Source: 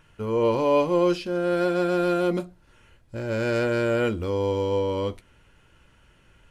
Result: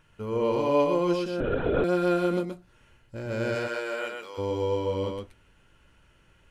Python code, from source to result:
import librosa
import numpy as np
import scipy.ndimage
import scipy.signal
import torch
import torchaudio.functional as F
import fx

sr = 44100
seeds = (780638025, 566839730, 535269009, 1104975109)

y = fx.highpass(x, sr, hz=fx.line((3.54, 470.0), (4.37, 1000.0)), slope=12, at=(3.54, 4.37), fade=0.02)
y = y + 10.0 ** (-4.0 / 20.0) * np.pad(y, (int(125 * sr / 1000.0), 0))[:len(y)]
y = fx.lpc_vocoder(y, sr, seeds[0], excitation='whisper', order=16, at=(1.4, 1.84))
y = y * 10.0 ** (-4.5 / 20.0)